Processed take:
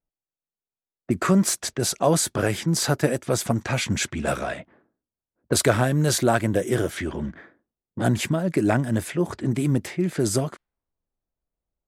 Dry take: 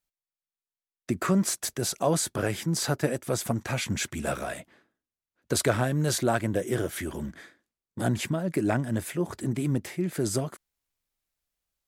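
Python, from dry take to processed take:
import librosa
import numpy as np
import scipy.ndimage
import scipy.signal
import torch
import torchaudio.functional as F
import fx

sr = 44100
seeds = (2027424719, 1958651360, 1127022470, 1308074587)

y = fx.env_lowpass(x, sr, base_hz=690.0, full_db=-24.5)
y = y * librosa.db_to_amplitude(5.0)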